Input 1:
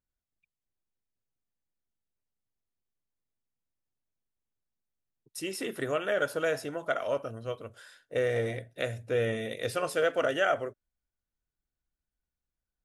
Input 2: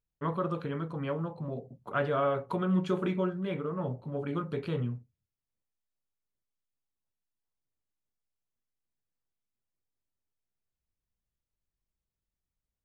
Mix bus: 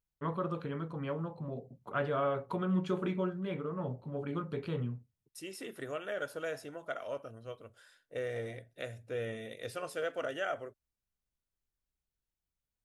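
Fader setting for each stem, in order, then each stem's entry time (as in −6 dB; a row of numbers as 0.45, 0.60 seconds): −9.0, −3.5 decibels; 0.00, 0.00 seconds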